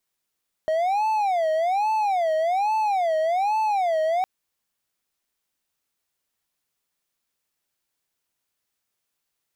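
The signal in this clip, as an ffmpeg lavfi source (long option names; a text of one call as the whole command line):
ffmpeg -f lavfi -i "aevalsrc='0.133*(1-4*abs(mod((752*t-124/(2*PI*1.2)*sin(2*PI*1.2*t))+0.25,1)-0.5))':duration=3.56:sample_rate=44100" out.wav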